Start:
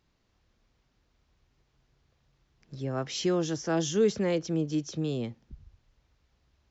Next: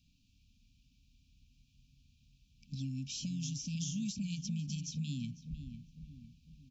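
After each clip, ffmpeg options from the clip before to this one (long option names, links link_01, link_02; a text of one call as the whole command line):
ffmpeg -i in.wav -filter_complex "[0:a]afftfilt=real='re*(1-between(b*sr/4096,290,2300))':imag='im*(1-between(b*sr/4096,290,2300))':win_size=4096:overlap=0.75,acrossover=split=330|5100[link_01][link_02][link_03];[link_01]acompressor=threshold=-42dB:ratio=4[link_04];[link_02]acompressor=threshold=-57dB:ratio=4[link_05];[link_03]acompressor=threshold=-47dB:ratio=4[link_06];[link_04][link_05][link_06]amix=inputs=3:normalize=0,asplit=2[link_07][link_08];[link_08]adelay=501,lowpass=frequency=1600:poles=1,volume=-9dB,asplit=2[link_09][link_10];[link_10]adelay=501,lowpass=frequency=1600:poles=1,volume=0.48,asplit=2[link_11][link_12];[link_12]adelay=501,lowpass=frequency=1600:poles=1,volume=0.48,asplit=2[link_13][link_14];[link_14]adelay=501,lowpass=frequency=1600:poles=1,volume=0.48,asplit=2[link_15][link_16];[link_16]adelay=501,lowpass=frequency=1600:poles=1,volume=0.48[link_17];[link_07][link_09][link_11][link_13][link_15][link_17]amix=inputs=6:normalize=0,volume=3.5dB" out.wav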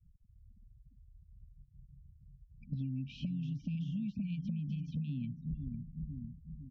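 ffmpeg -i in.wav -af "afftfilt=real='re*gte(hypot(re,im),0.00224)':imag='im*gte(hypot(re,im),0.00224)':win_size=1024:overlap=0.75,lowpass=frequency=2300:width=0.5412,lowpass=frequency=2300:width=1.3066,acompressor=threshold=-45dB:ratio=6,volume=10dB" out.wav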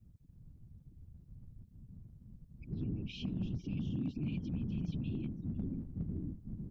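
ffmpeg -i in.wav -af "alimiter=level_in=13dB:limit=-24dB:level=0:latency=1:release=20,volume=-13dB,afftfilt=real='hypot(re,im)*cos(2*PI*random(0))':imag='hypot(re,im)*sin(2*PI*random(1))':win_size=512:overlap=0.75,asoftclip=type=hard:threshold=-40dB,volume=10.5dB" out.wav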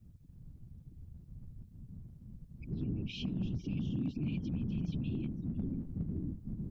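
ffmpeg -i in.wav -filter_complex "[0:a]bandreject=frequency=50:width_type=h:width=6,bandreject=frequency=100:width_type=h:width=6,asplit=2[link_01][link_02];[link_02]alimiter=level_in=12dB:limit=-24dB:level=0:latency=1:release=150,volume=-12dB,volume=0.5dB[link_03];[link_01][link_03]amix=inputs=2:normalize=0,volume=-2dB" out.wav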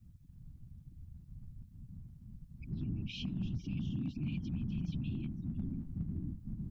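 ffmpeg -i in.wav -af "equalizer=frequency=470:width_type=o:width=0.95:gain=-14" out.wav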